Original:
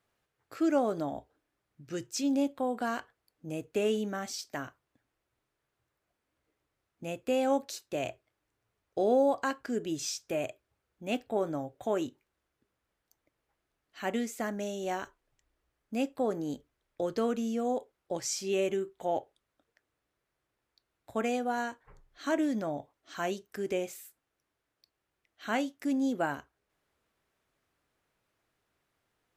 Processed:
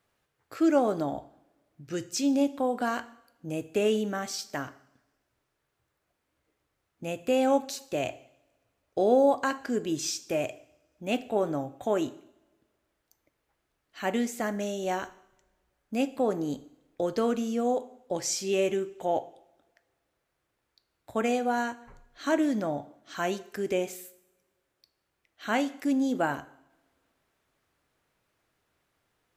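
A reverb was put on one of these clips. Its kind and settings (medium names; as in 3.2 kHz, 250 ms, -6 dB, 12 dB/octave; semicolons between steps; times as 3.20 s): two-slope reverb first 0.69 s, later 2 s, from -22 dB, DRR 13.5 dB; trim +3.5 dB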